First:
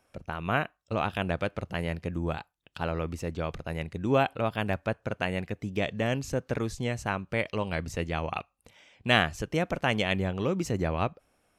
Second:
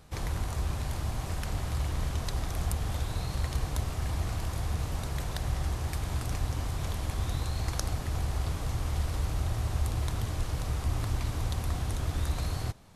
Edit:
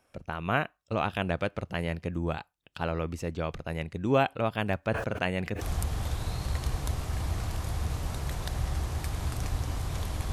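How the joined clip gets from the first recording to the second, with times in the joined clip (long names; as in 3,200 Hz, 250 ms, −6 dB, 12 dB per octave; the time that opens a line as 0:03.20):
first
0:04.81–0:05.61: level that may fall only so fast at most 65 dB per second
0:05.61: continue with second from 0:02.50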